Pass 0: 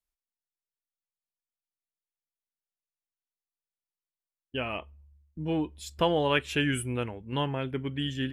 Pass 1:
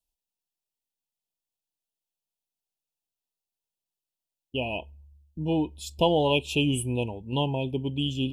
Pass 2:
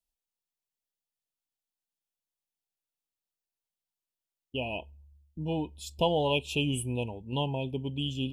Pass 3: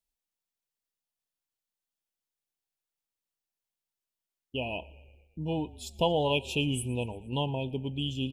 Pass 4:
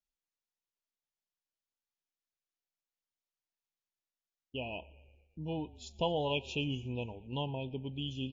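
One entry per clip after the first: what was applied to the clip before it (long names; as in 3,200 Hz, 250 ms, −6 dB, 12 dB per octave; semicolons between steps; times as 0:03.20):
Chebyshev band-stop filter 970–2,500 Hz, order 5; level +4 dB
dynamic equaliser 330 Hz, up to −5 dB, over −38 dBFS, Q 3.7; level −3.5 dB
echo with shifted repeats 116 ms, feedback 60%, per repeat −32 Hz, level −22 dB
level −5.5 dB; MP3 32 kbit/s 16,000 Hz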